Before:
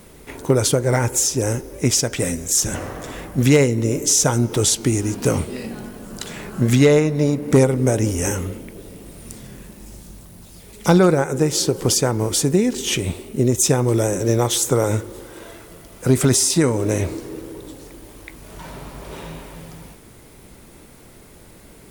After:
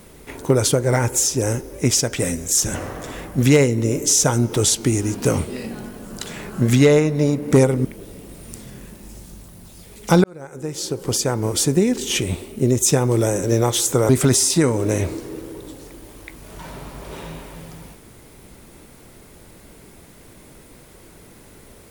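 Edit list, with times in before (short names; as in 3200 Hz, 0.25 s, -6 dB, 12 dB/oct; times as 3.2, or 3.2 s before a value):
7.85–8.62 cut
11.01–12.37 fade in
14.86–16.09 cut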